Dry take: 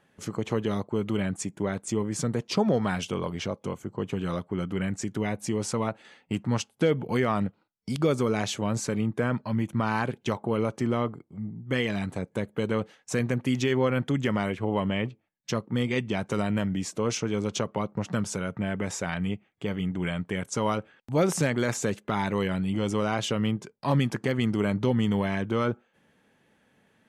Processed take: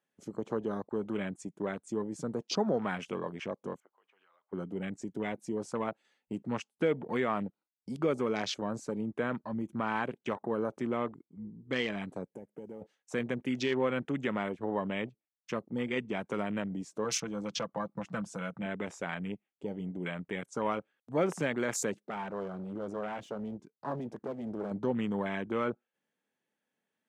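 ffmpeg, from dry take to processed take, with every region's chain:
ffmpeg -i in.wav -filter_complex "[0:a]asettb=1/sr,asplit=3[link_01][link_02][link_03];[link_01]atrim=end=3.804[link_04];[link_02]atrim=start=3.8:end=4.53,asetpts=PTS-STARTPTS,afade=type=in:duration=0.004:curve=qsin,afade=type=out:start_time=0.726:duration=0.004:curve=qsin,asuperpass=centerf=1400:order=4:qfactor=0.76,acompressor=threshold=-44dB:ratio=5:attack=3.2:release=140:knee=1:detection=peak[link_05];[link_03]atrim=start=4.526[link_06];[link_04][link_05]acrossfade=duration=0.004:curve1=hsin:curve2=qsin[link_07];[link_07][link_06]acrossfade=duration=0.004:curve1=qsin:curve2=hsin,asettb=1/sr,asplit=3[link_08][link_09][link_10];[link_08]atrim=end=12.344[link_11];[link_09]atrim=start=12.34:end=12.82,asetpts=PTS-STARTPTS,afade=type=in:duration=0.004:curve=qsin,afade=type=out:start_time=0.476:duration=0.004:curve=qsin,asuperstop=centerf=4100:order=4:qfactor=1.7,acompressor=threshold=-35dB:ratio=4:attack=3.2:release=140:knee=1:detection=peak,acrusher=bits=8:mode=log:mix=0:aa=0.000001[link_12];[link_10]atrim=start=12.816[link_13];[link_11][link_12]acrossfade=duration=0.004:curve1=hsin:curve2=qsin[link_14];[link_14][link_13]acrossfade=duration=0.004:curve1=qsin:curve2=hsin,asettb=1/sr,asplit=3[link_15][link_16][link_17];[link_15]atrim=end=17.044[link_18];[link_16]atrim=start=17.04:end=18.66,asetpts=PTS-STARTPTS,afade=type=in:duration=0.004:curve=qsin,afade=type=out:start_time=1.616:duration=0.004:curve=qsin,equalizer=frequency=370:width_type=o:width=0.34:gain=-14.5,aecho=1:1:6:0.5,atrim=end_sample=71442,asoftclip=type=hard:threshold=-18.5dB[link_19];[link_17]atrim=start=18.656[link_20];[link_18][link_19]acrossfade=duration=0.004:curve1=hsin:curve2=qsin[link_21];[link_21][link_20]acrossfade=duration=0.004:curve1=qsin:curve2=hsin,asettb=1/sr,asplit=3[link_22][link_23][link_24];[link_22]atrim=end=21.974[link_25];[link_23]atrim=start=21.97:end=24.71,asetpts=PTS-STARTPTS,afade=type=in:duration=0.004:curve=qsin,afade=type=out:start_time=2.736:duration=0.004:curve=qsin,highshelf=frequency=4500:gain=-10.5,aeval=exprs='clip(val(0),-1,0.0158)':channel_layout=same[link_26];[link_24]atrim=start=24.706[link_27];[link_25][link_26]acrossfade=duration=0.004:curve1=hsin:curve2=qsin[link_28];[link_28][link_27]acrossfade=duration=0.004:curve1=qsin:curve2=hsin,highpass=210,afwtdn=0.0126,equalizer=frequency=7300:width=0.68:gain=5.5,volume=-4.5dB" out.wav

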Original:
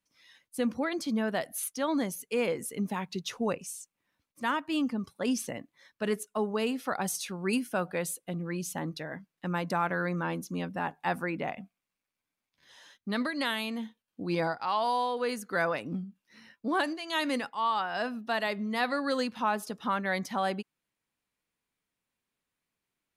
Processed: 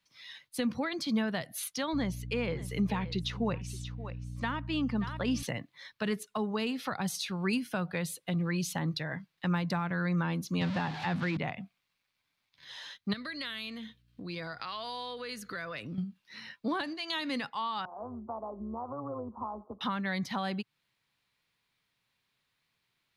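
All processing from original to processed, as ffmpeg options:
ffmpeg -i in.wav -filter_complex "[0:a]asettb=1/sr,asplit=3[link_01][link_02][link_03];[link_01]atrim=end=1.934[link_04];[link_02]atrim=start=1.93:end=5.43,asetpts=PTS-STARTPTS,afade=type=in:duration=0.004:curve=qsin,afade=type=out:start_time=3.496:duration=0.004:curve=qsin,lowpass=frequency=3100:poles=1,aeval=exprs='val(0)+0.00631*(sin(2*PI*60*n/s)+sin(2*PI*2*60*n/s)/2+sin(2*PI*3*60*n/s)/3+sin(2*PI*4*60*n/s)/4+sin(2*PI*5*60*n/s)/5)':channel_layout=same,aecho=1:1:577:0.126,atrim=end_sample=154350[link_05];[link_03]atrim=start=5.426[link_06];[link_04][link_05]acrossfade=duration=0.004:curve1=hsin:curve2=qsin[link_07];[link_07][link_06]acrossfade=duration=0.004:curve1=qsin:curve2=hsin,asettb=1/sr,asplit=3[link_08][link_09][link_10];[link_08]atrim=end=10.614[link_11];[link_09]atrim=start=10.61:end=11.37,asetpts=PTS-STARTPTS,afade=type=in:duration=0.004:curve=qsin,afade=type=out:start_time=0.756:duration=0.004:curve=qsin,aeval=exprs='val(0)+0.5*0.0211*sgn(val(0))':channel_layout=same,highpass=110,lowpass=5300[link_12];[link_10]atrim=start=11.366[link_13];[link_11][link_12]acrossfade=duration=0.004:curve1=hsin:curve2=qsin[link_14];[link_14][link_13]acrossfade=duration=0.004:curve1=qsin:curve2=hsin,asettb=1/sr,asplit=3[link_15][link_16][link_17];[link_15]atrim=end=13.134[link_18];[link_16]atrim=start=13.13:end=15.98,asetpts=PTS-STARTPTS,afade=type=in:duration=0.004:curve=qsin,afade=type=out:start_time=2.846:duration=0.004:curve=qsin,equalizer=frequency=860:width=3.7:gain=-14.5,acompressor=threshold=-42dB:ratio=4:attack=3.2:release=140:knee=1:detection=peak,aeval=exprs='val(0)+0.000251*(sin(2*PI*60*n/s)+sin(2*PI*2*60*n/s)/2+sin(2*PI*3*60*n/s)/3+sin(2*PI*4*60*n/s)/4+sin(2*PI*5*60*n/s)/5)':channel_layout=same[link_19];[link_17]atrim=start=15.976[link_20];[link_18][link_19]acrossfade=duration=0.004:curve1=hsin:curve2=qsin[link_21];[link_21][link_20]acrossfade=duration=0.004:curve1=qsin:curve2=hsin,asettb=1/sr,asplit=3[link_22][link_23][link_24];[link_22]atrim=end=17.854[link_25];[link_23]atrim=start=17.85:end=19.81,asetpts=PTS-STARTPTS,afade=type=in:duration=0.004:curve=qsin,afade=type=out:start_time=1.956:duration=0.004:curve=qsin,acompressor=threshold=-39dB:ratio=2:attack=3.2:release=140:knee=1:detection=peak,asuperpass=centerf=480:order=20:qfactor=0.51,tremolo=f=150:d=0.519[link_26];[link_24]atrim=start=19.806[link_27];[link_25][link_26]acrossfade=duration=0.004:curve1=hsin:curve2=qsin[link_28];[link_28][link_27]acrossfade=duration=0.004:curve1=qsin:curve2=hsin,equalizer=frequency=125:width_type=o:width=1:gain=9,equalizer=frequency=250:width_type=o:width=1:gain=-3,equalizer=frequency=1000:width_type=o:width=1:gain=4,equalizer=frequency=2000:width_type=o:width=1:gain=5,equalizer=frequency=4000:width_type=o:width=1:gain=11,equalizer=frequency=8000:width_type=o:width=1:gain=-3,acrossover=split=280[link_29][link_30];[link_30]acompressor=threshold=-36dB:ratio=4[link_31];[link_29][link_31]amix=inputs=2:normalize=0,volume=1.5dB" out.wav

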